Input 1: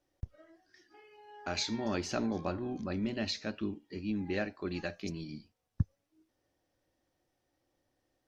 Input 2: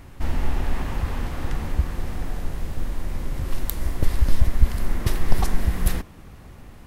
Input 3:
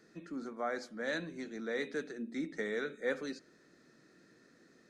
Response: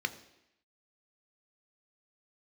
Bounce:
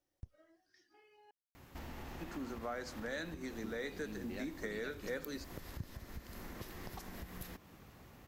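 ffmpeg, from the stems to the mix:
-filter_complex "[0:a]volume=-8.5dB,asplit=3[link_01][link_02][link_03];[link_01]atrim=end=1.31,asetpts=PTS-STARTPTS,afade=type=out:start_time=1.306:duration=0.004:curve=hsin[link_04];[link_02]atrim=start=1.31:end=3.64,asetpts=PTS-STARTPTS,volume=0[link_05];[link_03]atrim=start=3.64,asetpts=PTS-STARTPTS,afade=type=in:duration=0.004:curve=hsin[link_06];[link_04][link_05][link_06]concat=n=3:v=0:a=1[link_07];[1:a]highpass=frequency=150:poles=1,equalizer=frequency=9400:width_type=o:width=0.42:gain=-11,acompressor=threshold=-34dB:ratio=6,adelay=1550,volume=-9.5dB[link_08];[2:a]adelay=2050,volume=2dB[link_09];[link_07][link_08][link_09]amix=inputs=3:normalize=0,highshelf=frequency=6600:gain=8,acompressor=threshold=-41dB:ratio=2.5"

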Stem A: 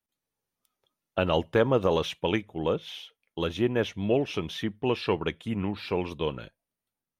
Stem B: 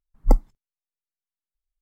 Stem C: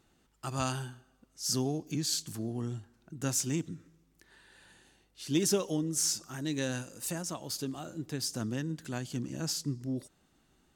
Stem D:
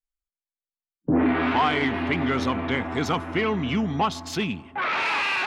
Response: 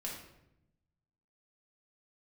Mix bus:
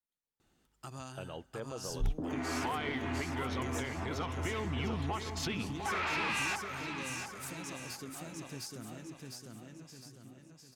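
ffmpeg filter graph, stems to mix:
-filter_complex "[0:a]alimiter=limit=-20dB:level=0:latency=1:release=391,volume=-12dB[link_01];[1:a]asoftclip=type=hard:threshold=-18dB,adelay=1750,volume=-1dB[link_02];[2:a]acompressor=threshold=-40dB:ratio=3,adelay=400,volume=-4dB,afade=type=out:start_time=8.66:duration=0.7:silence=0.266073,asplit=2[link_03][link_04];[link_04]volume=-3dB[link_05];[3:a]asubboost=boost=10:cutoff=64,acompressor=threshold=-30dB:ratio=6,adelay=1100,volume=-1.5dB,asplit=2[link_06][link_07];[link_07]volume=-9dB[link_08];[link_05][link_08]amix=inputs=2:normalize=0,aecho=0:1:702|1404|2106|2808|3510|4212:1|0.44|0.194|0.0852|0.0375|0.0165[link_09];[link_01][link_02][link_03][link_06][link_09]amix=inputs=5:normalize=0,alimiter=level_in=1dB:limit=-24dB:level=0:latency=1:release=490,volume=-1dB"

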